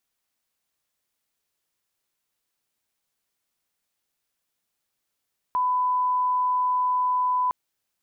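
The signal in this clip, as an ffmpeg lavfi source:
ffmpeg -f lavfi -i "sine=frequency=1000:duration=1.96:sample_rate=44100,volume=-1.94dB" out.wav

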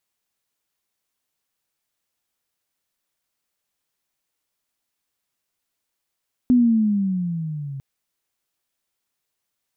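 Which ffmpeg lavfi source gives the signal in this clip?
ffmpeg -f lavfi -i "aevalsrc='pow(10,(-11-18*t/1.3)/20)*sin(2*PI*253*1.3/(-11*log(2)/12)*(exp(-11*log(2)/12*t/1.3)-1))':duration=1.3:sample_rate=44100" out.wav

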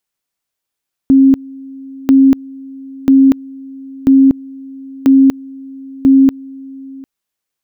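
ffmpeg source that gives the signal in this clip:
ffmpeg -f lavfi -i "aevalsrc='pow(10,(-3.5-24*gte(mod(t,0.99),0.24))/20)*sin(2*PI*269*t)':duration=5.94:sample_rate=44100" out.wav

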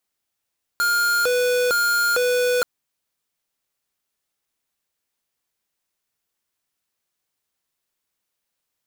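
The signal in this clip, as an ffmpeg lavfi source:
ffmpeg -f lavfi -i "aevalsrc='0.106*(2*lt(mod((952*t+458/1.1*(0.5-abs(mod(1.1*t,1)-0.5))),1),0.5)-1)':duration=1.83:sample_rate=44100" out.wav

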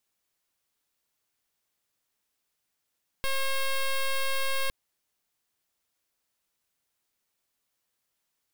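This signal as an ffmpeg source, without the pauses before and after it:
ffmpeg -f lavfi -i "aevalsrc='0.0473*(2*lt(mod(539*t,1),0.08)-1)':duration=1.46:sample_rate=44100" out.wav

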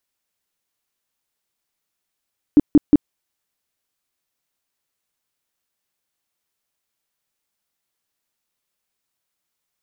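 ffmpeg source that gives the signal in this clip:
ffmpeg -f lavfi -i "aevalsrc='0.531*sin(2*PI*295*mod(t,0.18))*lt(mod(t,0.18),8/295)':duration=0.54:sample_rate=44100" out.wav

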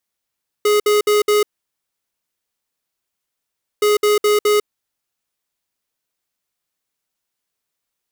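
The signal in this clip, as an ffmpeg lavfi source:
ffmpeg -f lavfi -i "aevalsrc='0.2*(2*lt(mod(418*t,1),0.5)-1)*clip(min(mod(mod(t,3.17),0.21),0.15-mod(mod(t,3.17),0.21))/0.005,0,1)*lt(mod(t,3.17),0.84)':duration=6.34:sample_rate=44100" out.wav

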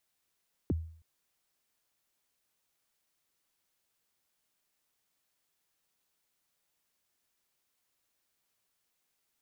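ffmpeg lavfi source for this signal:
ffmpeg -f lavfi -i "aevalsrc='0.0631*pow(10,-3*t/0.53)*sin(2*PI*(420*0.025/log(81/420)*(exp(log(81/420)*min(t,0.025)/0.025)-1)+81*max(t-0.025,0)))':duration=0.32:sample_rate=44100" out.wav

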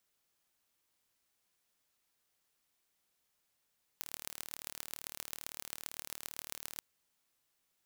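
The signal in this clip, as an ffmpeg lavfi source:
ffmpeg -f lavfi -i "aevalsrc='0.266*eq(mod(n,1167),0)*(0.5+0.5*eq(mod(n,5835),0))':duration=2.8:sample_rate=44100" out.wav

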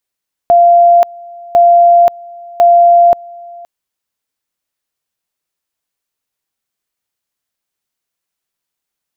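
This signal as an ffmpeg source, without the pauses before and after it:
ffmpeg -f lavfi -i "aevalsrc='pow(10,(-3-25*gte(mod(t,1.05),0.53))/20)*sin(2*PI*692*t)':duration=3.15:sample_rate=44100" out.wav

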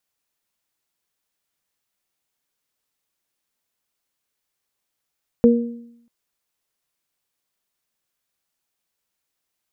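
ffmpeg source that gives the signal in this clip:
ffmpeg -f lavfi -i "aevalsrc='0.355*pow(10,-3*t/0.78)*sin(2*PI*235*t)+0.316*pow(10,-3*t/0.54)*sin(2*PI*474*t)':duration=0.64:sample_rate=44100" out.wav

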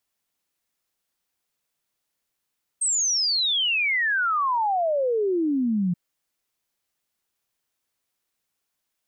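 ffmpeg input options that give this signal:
ffmpeg -f lavfi -i "aevalsrc='0.1*clip(min(t,3.13-t)/0.01,0,1)*sin(2*PI*8500*3.13/log(170/8500)*(exp(log(170/8500)*t/3.13)-1))':duration=3.13:sample_rate=44100" out.wav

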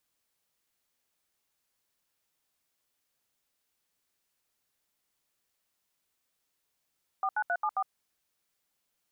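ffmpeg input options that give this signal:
ffmpeg -f lavfi -i "aevalsrc='0.0355*clip(min(mod(t,0.134),0.06-mod(t,0.134))/0.002,0,1)*(eq(floor(t/0.134),0)*(sin(2*PI*770*mod(t,0.134))+sin(2*PI*1209*mod(t,0.134)))+eq(floor(t/0.134),1)*(sin(2*PI*852*mod(t,0.134))+sin(2*PI*1477*mod(t,0.134)))+eq(floor(t/0.134),2)*(sin(2*PI*697*mod(t,0.134))+sin(2*PI*1477*mod(t,0.134)))+eq(floor(t/0.134),3)*(sin(2*PI*852*mod(t,0.134))+sin(2*PI*1209*mod(t,0.134)))+eq(floor(t/0.134),4)*(sin(2*PI*770*mod(t,0.134))+sin(2*PI*1209*mod(t,0.134))))':duration=0.67:sample_rate=44100" out.wav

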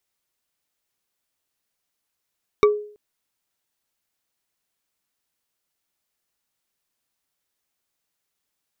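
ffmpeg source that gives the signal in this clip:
ffmpeg -f lavfi -i "aevalsrc='0.355*pow(10,-3*t/0.49)*sin(2*PI*418*t)+0.2*pow(10,-3*t/0.145)*sin(2*PI*1152.4*t)+0.112*pow(10,-3*t/0.065)*sin(2*PI*2258.9*t)+0.0631*pow(10,-3*t/0.035)*sin(2*PI*3734*t)+0.0355*pow(10,-3*t/0.022)*sin(2*PI*5576.1*t)':duration=0.33:sample_rate=44100" out.wav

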